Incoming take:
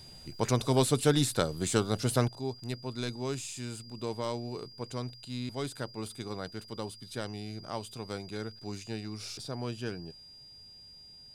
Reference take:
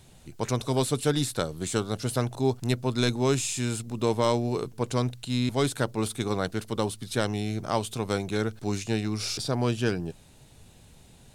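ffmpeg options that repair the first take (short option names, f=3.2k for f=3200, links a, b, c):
-af "bandreject=f=4.8k:w=30,asetnsamples=n=441:p=0,asendcmd='2.28 volume volume 10.5dB',volume=0dB"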